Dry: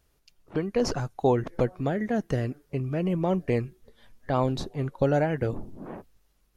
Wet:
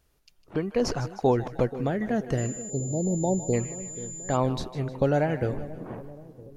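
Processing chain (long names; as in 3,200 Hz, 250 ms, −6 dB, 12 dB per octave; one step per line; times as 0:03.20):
echo with a time of its own for lows and highs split 580 Hz, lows 481 ms, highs 154 ms, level −14 dB
0:02.70–0:03.53: time-frequency box erased 930–3,500 Hz
0:02.37–0:04.35: steady tone 7,100 Hz −37 dBFS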